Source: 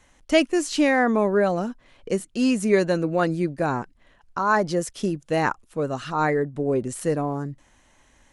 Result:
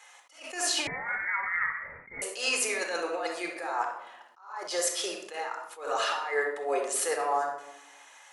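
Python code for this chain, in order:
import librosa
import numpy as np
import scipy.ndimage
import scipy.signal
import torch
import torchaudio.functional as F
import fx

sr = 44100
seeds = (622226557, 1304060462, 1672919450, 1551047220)

y = scipy.signal.sosfilt(scipy.signal.butter(4, 680.0, 'highpass', fs=sr, output='sos'), x)
y = fx.over_compress(y, sr, threshold_db=-34.0, ratio=-1.0)
y = fx.room_shoebox(y, sr, seeds[0], volume_m3=2900.0, walls='furnished', distance_m=4.0)
y = fx.freq_invert(y, sr, carrier_hz=2600, at=(0.87, 2.22))
y = fx.attack_slew(y, sr, db_per_s=120.0)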